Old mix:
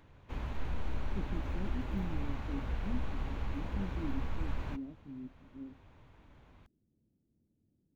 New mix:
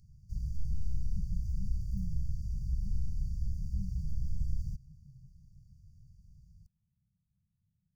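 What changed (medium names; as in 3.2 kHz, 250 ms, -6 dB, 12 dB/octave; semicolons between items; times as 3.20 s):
background +3.5 dB; master: add brick-wall FIR band-stop 200–4500 Hz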